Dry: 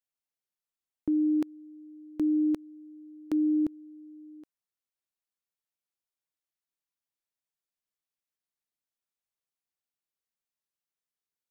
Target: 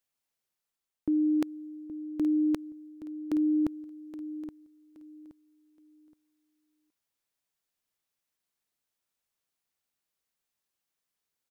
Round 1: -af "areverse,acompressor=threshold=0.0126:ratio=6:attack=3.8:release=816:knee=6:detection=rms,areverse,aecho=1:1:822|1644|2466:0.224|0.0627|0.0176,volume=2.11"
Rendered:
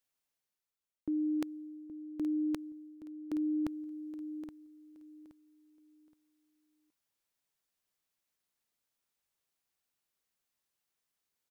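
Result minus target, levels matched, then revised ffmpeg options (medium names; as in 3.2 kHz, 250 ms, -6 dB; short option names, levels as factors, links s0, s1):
compression: peak gain reduction +6.5 dB
-af "areverse,acompressor=threshold=0.0316:ratio=6:attack=3.8:release=816:knee=6:detection=rms,areverse,aecho=1:1:822|1644|2466:0.224|0.0627|0.0176,volume=2.11"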